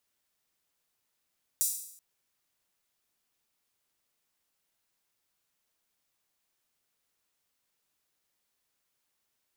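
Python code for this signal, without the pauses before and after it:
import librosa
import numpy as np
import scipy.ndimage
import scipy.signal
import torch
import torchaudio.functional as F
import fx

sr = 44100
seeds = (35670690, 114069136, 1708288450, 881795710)

y = fx.drum_hat_open(sr, length_s=0.38, from_hz=7500.0, decay_s=0.7)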